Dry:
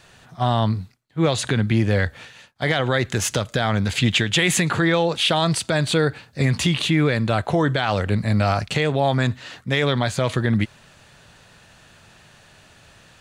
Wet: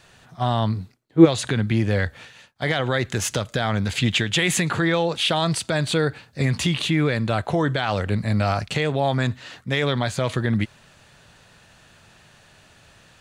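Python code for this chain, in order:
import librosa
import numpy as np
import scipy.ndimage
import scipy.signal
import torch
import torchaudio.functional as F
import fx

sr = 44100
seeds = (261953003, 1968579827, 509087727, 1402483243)

y = fx.peak_eq(x, sr, hz=370.0, db=fx.line((0.75, 4.0), (1.24, 15.0)), octaves=1.7, at=(0.75, 1.24), fade=0.02)
y = y * 10.0 ** (-2.0 / 20.0)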